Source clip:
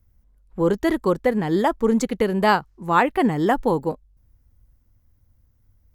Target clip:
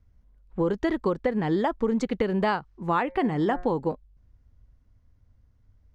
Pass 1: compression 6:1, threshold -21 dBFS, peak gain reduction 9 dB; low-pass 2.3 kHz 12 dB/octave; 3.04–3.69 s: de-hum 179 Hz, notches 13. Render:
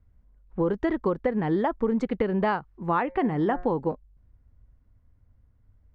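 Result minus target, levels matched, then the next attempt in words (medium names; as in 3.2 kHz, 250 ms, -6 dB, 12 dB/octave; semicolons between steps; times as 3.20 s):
4 kHz band -6.0 dB
compression 6:1, threshold -21 dBFS, peak gain reduction 9 dB; low-pass 4.6 kHz 12 dB/octave; 3.04–3.69 s: de-hum 179 Hz, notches 13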